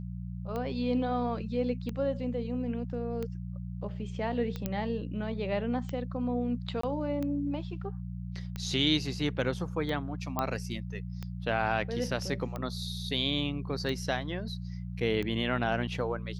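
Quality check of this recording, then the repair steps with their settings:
hum 60 Hz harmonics 3 -38 dBFS
tick 45 rpm -23 dBFS
4.66 s: pop -17 dBFS
6.81–6.83 s: dropout 24 ms
10.39 s: pop -15 dBFS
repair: de-click; de-hum 60 Hz, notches 3; interpolate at 6.81 s, 24 ms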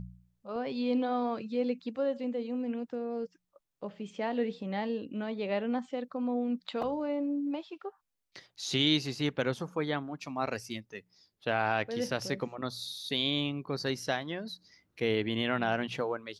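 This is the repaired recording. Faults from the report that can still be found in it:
nothing left

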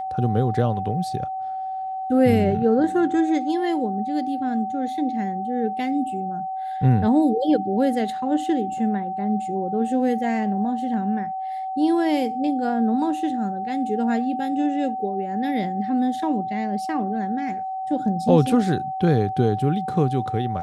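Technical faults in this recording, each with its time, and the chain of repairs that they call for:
whine 760 Hz -26 dBFS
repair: band-stop 760 Hz, Q 30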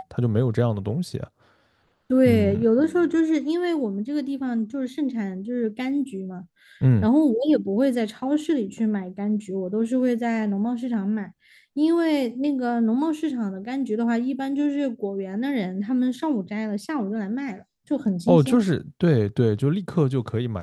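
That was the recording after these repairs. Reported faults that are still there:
nothing left

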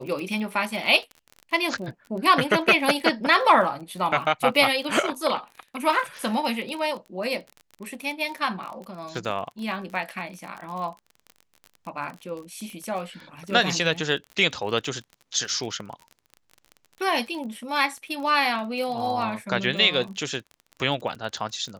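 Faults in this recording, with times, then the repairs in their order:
crackle 31 per s -32 dBFS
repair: de-click

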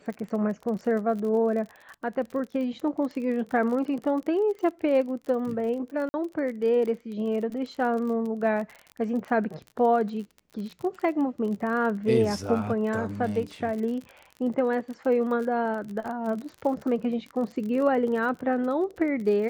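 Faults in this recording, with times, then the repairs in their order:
crackle 43 per s -34 dBFS
6.09–6.14 s: dropout 50 ms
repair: de-click; interpolate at 6.09 s, 50 ms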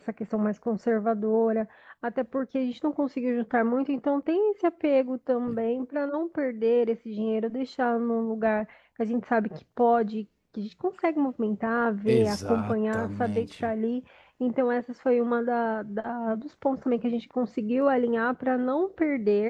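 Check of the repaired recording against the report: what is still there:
nothing left

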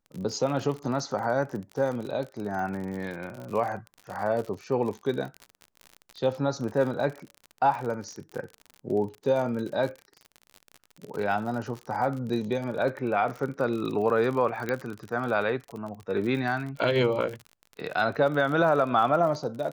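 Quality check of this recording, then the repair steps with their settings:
crackle 47 per s -33 dBFS
14.69 s: pop -15 dBFS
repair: de-click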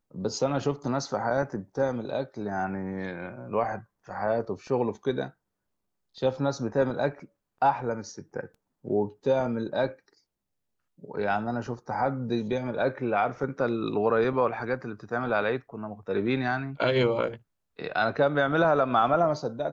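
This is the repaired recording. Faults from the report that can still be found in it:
nothing left

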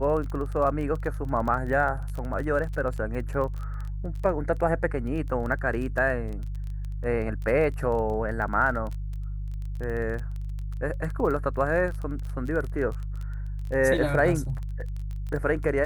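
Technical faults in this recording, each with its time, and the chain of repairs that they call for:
crackle 23 per s -32 dBFS
hum 50 Hz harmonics 3 -32 dBFS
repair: de-click; de-hum 50 Hz, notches 3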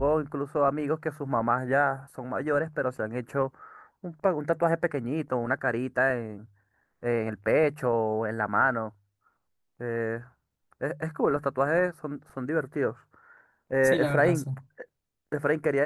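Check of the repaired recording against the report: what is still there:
nothing left

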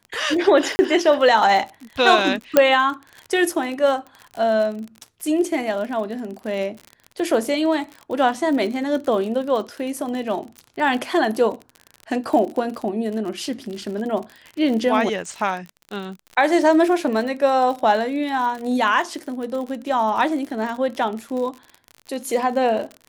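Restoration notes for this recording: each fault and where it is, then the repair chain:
crackle 47 per s -28 dBFS
0.76–0.79 s: dropout 30 ms
2.57 s: pop 0 dBFS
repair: de-click; interpolate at 0.76 s, 30 ms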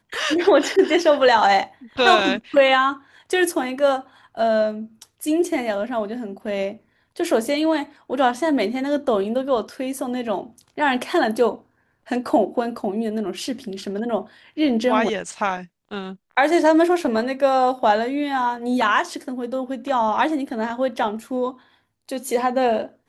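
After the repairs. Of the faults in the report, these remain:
2.57 s: pop

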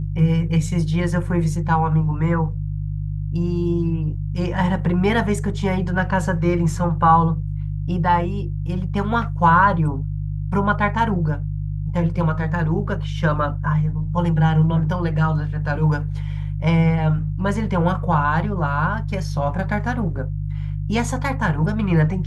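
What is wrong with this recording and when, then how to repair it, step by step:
hum 50 Hz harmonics 3 -25 dBFS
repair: de-hum 50 Hz, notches 3

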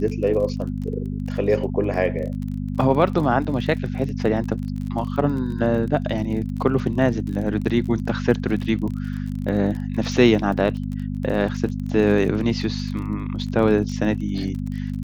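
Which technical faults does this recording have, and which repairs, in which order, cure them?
crackle 33 per s -30 dBFS
hum 50 Hz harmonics 5 -27 dBFS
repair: de-click; de-hum 50 Hz, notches 5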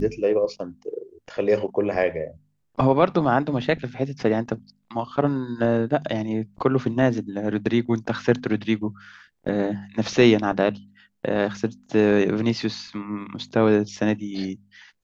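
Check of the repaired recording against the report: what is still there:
nothing left

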